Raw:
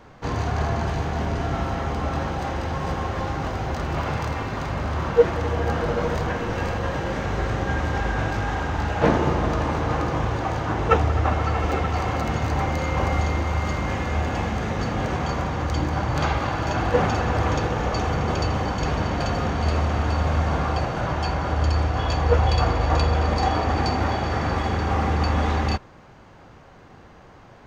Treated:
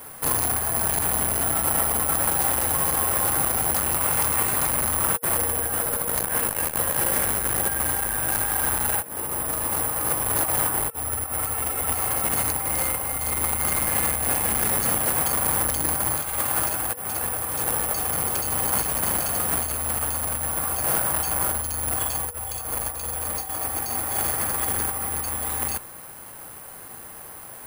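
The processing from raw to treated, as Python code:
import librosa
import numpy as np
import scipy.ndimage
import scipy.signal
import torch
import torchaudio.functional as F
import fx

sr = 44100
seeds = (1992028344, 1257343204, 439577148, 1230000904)

y = fx.low_shelf(x, sr, hz=460.0, db=-10.0)
y = fx.over_compress(y, sr, threshold_db=-31.0, ratio=-0.5)
y = (np.kron(y[::4], np.eye(4)[0]) * 4)[:len(y)]
y = fx.transformer_sat(y, sr, knee_hz=2300.0)
y = y * 10.0 ** (3.0 / 20.0)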